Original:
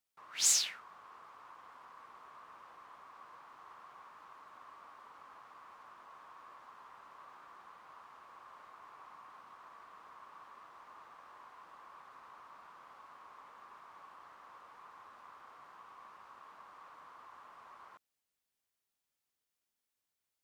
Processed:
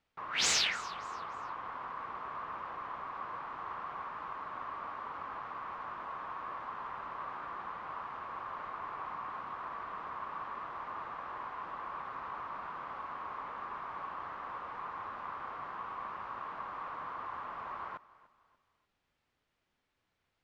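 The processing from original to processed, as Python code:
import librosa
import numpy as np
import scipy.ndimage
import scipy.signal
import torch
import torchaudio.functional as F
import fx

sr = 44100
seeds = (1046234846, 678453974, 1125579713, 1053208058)

p1 = scipy.signal.sosfilt(scipy.signal.butter(2, 2700.0, 'lowpass', fs=sr, output='sos'), x)
p2 = fx.low_shelf(p1, sr, hz=160.0, db=8.0)
p3 = 10.0 ** (-39.5 / 20.0) * np.tanh(p2 / 10.0 ** (-39.5 / 20.0))
p4 = p2 + F.gain(torch.from_numpy(p3), -10.0).numpy()
p5 = fx.echo_feedback(p4, sr, ms=293, feedback_pct=35, wet_db=-20)
y = F.gain(torch.from_numpy(p5), 11.0).numpy()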